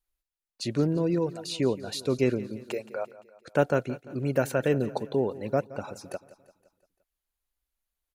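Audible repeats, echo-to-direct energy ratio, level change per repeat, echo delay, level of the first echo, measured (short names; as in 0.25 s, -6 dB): 4, -16.0 dB, -5.5 dB, 0.172 s, -17.5 dB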